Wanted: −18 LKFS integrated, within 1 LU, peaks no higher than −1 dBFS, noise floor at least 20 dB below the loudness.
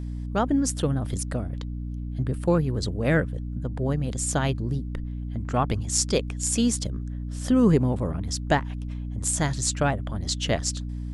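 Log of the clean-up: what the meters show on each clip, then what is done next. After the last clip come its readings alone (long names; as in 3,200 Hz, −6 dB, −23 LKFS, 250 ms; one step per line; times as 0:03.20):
mains hum 60 Hz; hum harmonics up to 300 Hz; level of the hum −29 dBFS; integrated loudness −26.0 LKFS; sample peak −7.0 dBFS; target loudness −18.0 LKFS
→ mains-hum notches 60/120/180/240/300 Hz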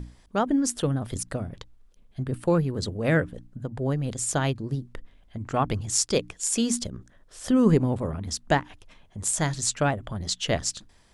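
mains hum none found; integrated loudness −26.5 LKFS; sample peak −7.0 dBFS; target loudness −18.0 LKFS
→ level +8.5 dB
brickwall limiter −1 dBFS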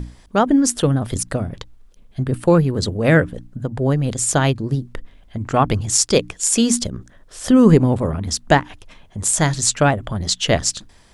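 integrated loudness −18.0 LKFS; sample peak −1.0 dBFS; background noise floor −49 dBFS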